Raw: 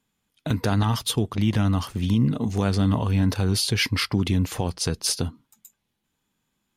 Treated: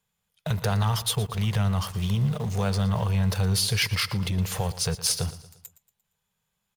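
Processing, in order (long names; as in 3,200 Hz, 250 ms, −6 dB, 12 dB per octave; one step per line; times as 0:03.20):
Chebyshev band-stop filter 180–450 Hz, order 2
high-shelf EQ 9,600 Hz +5.5 dB
in parallel at −11 dB: log-companded quantiser 2 bits
on the sum: repeating echo 116 ms, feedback 43%, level −16 dB
0:03.95–0:04.38: saturating transformer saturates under 450 Hz
level −2.5 dB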